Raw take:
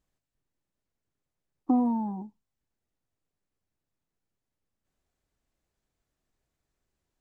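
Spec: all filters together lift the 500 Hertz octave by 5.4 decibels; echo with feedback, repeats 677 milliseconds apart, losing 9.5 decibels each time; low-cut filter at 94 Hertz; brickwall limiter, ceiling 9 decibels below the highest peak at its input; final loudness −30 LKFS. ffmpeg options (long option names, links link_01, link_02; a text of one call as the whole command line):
ffmpeg -i in.wav -af "highpass=94,equalizer=frequency=500:width_type=o:gain=6,alimiter=limit=-21.5dB:level=0:latency=1,aecho=1:1:677|1354|2031|2708:0.335|0.111|0.0365|0.012,volume=3.5dB" out.wav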